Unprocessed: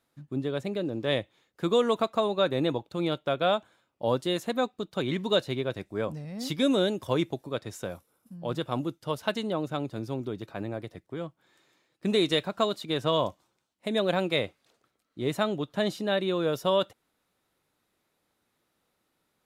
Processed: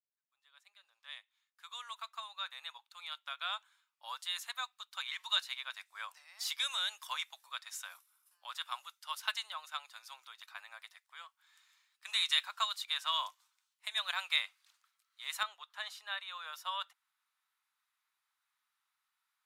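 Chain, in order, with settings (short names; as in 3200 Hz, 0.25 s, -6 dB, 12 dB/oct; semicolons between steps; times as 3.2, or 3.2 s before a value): opening faded in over 5.80 s; steep high-pass 990 Hz 36 dB/oct; high shelf 2200 Hz +5.5 dB, from 15.43 s -4 dB; gain -4 dB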